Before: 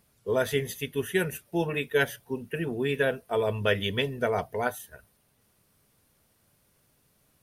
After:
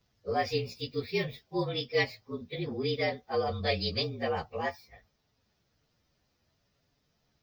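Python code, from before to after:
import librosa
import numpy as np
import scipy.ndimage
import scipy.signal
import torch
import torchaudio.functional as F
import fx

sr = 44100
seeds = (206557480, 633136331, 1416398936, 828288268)

y = fx.partial_stretch(x, sr, pct=113)
y = fx.high_shelf_res(y, sr, hz=6900.0, db=-10.0, q=3.0)
y = y * 10.0 ** (-2.0 / 20.0)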